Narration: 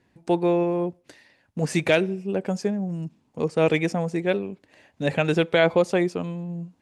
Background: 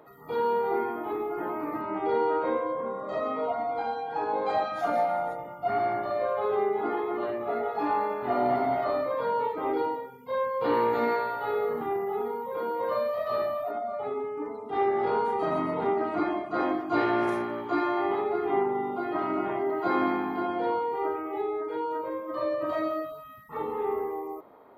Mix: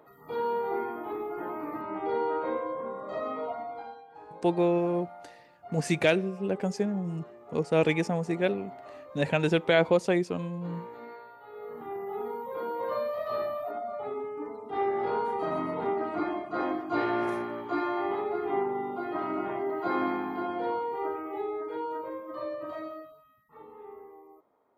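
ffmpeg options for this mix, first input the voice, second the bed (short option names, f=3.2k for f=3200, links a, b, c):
-filter_complex "[0:a]adelay=4150,volume=-3.5dB[a];[1:a]volume=12dB,afade=t=out:st=3.32:d=0.75:silence=0.177828,afade=t=in:st=11.51:d=0.83:silence=0.16788,afade=t=out:st=21.85:d=1.49:silence=0.199526[b];[a][b]amix=inputs=2:normalize=0"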